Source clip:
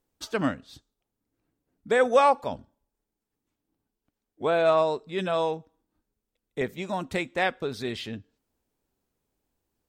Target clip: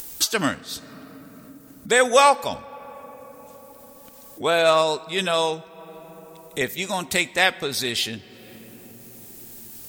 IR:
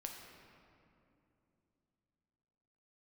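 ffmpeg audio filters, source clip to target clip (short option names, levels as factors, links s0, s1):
-filter_complex "[0:a]asplit=2[s0][s1];[1:a]atrim=start_sample=2205[s2];[s1][s2]afir=irnorm=-1:irlink=0,volume=0.266[s3];[s0][s3]amix=inputs=2:normalize=0,acompressor=mode=upward:threshold=0.0251:ratio=2.5,crystalizer=i=7.5:c=0"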